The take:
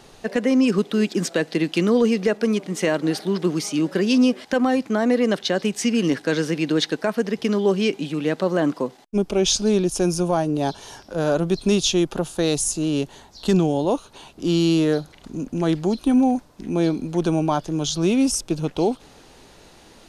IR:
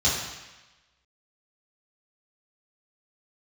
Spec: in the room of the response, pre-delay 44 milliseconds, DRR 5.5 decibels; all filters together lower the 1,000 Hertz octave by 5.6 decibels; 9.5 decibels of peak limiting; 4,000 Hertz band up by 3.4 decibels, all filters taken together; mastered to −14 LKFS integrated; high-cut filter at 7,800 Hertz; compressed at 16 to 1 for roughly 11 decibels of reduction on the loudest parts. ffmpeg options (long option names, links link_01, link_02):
-filter_complex "[0:a]lowpass=7800,equalizer=frequency=1000:width_type=o:gain=-8.5,equalizer=frequency=4000:width_type=o:gain=5,acompressor=threshold=-25dB:ratio=16,alimiter=limit=-22.5dB:level=0:latency=1,asplit=2[link_01][link_02];[1:a]atrim=start_sample=2205,adelay=44[link_03];[link_02][link_03]afir=irnorm=-1:irlink=0,volume=-19dB[link_04];[link_01][link_04]amix=inputs=2:normalize=0,volume=16.5dB"